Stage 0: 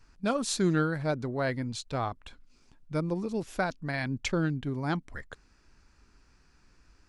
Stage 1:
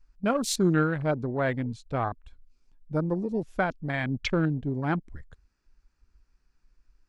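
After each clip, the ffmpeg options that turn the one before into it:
ffmpeg -i in.wav -af "afwtdn=0.0112,volume=3dB" out.wav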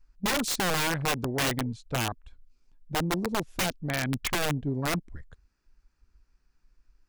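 ffmpeg -i in.wav -af "aeval=exprs='(mod(11.2*val(0)+1,2)-1)/11.2':channel_layout=same" out.wav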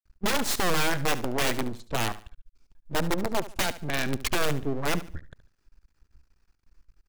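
ffmpeg -i in.wav -af "aeval=exprs='max(val(0),0)':channel_layout=same,aecho=1:1:72|144|216:0.178|0.0516|0.015,volume=5.5dB" out.wav

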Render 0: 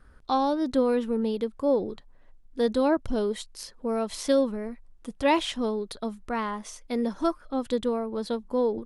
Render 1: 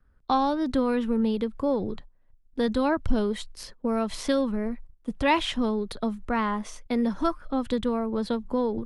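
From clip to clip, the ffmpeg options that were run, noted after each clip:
ffmpeg -i in.wav -filter_complex "[0:a]agate=range=-17dB:threshold=-46dB:ratio=16:detection=peak,bass=frequency=250:gain=5,treble=frequency=4000:gain=-7,acrossover=split=210|820|2300[link_01][link_02][link_03][link_04];[link_02]acompressor=threshold=-32dB:ratio=6[link_05];[link_01][link_05][link_03][link_04]amix=inputs=4:normalize=0,volume=4dB" out.wav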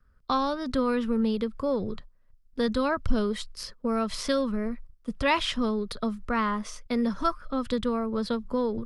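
ffmpeg -i in.wav -af "equalizer=frequency=315:width_type=o:width=0.33:gain=-8,equalizer=frequency=800:width_type=o:width=0.33:gain=-8,equalizer=frequency=1250:width_type=o:width=0.33:gain=5,equalizer=frequency=5000:width_type=o:width=0.33:gain=6" out.wav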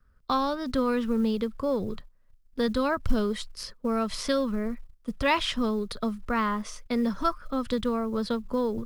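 ffmpeg -i in.wav -af "acrusher=bits=9:mode=log:mix=0:aa=0.000001" out.wav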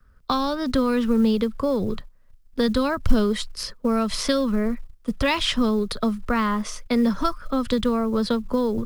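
ffmpeg -i in.wav -filter_complex "[0:a]acrossover=split=260|3000[link_01][link_02][link_03];[link_02]acompressor=threshold=-28dB:ratio=6[link_04];[link_01][link_04][link_03]amix=inputs=3:normalize=0,volume=7dB" out.wav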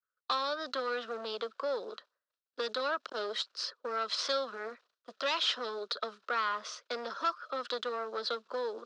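ffmpeg -i in.wav -af "agate=range=-33dB:threshold=-40dB:ratio=3:detection=peak,aeval=exprs='(tanh(8.91*val(0)+0.35)-tanh(0.35))/8.91':channel_layout=same,highpass=frequency=470:width=0.5412,highpass=frequency=470:width=1.3066,equalizer=frequency=830:width_type=q:width=4:gain=-7,equalizer=frequency=1400:width_type=q:width=4:gain=6,equalizer=frequency=2100:width_type=q:width=4:gain=-7,equalizer=frequency=4000:width_type=q:width=4:gain=5,lowpass=frequency=5800:width=0.5412,lowpass=frequency=5800:width=1.3066,volume=-4dB" out.wav

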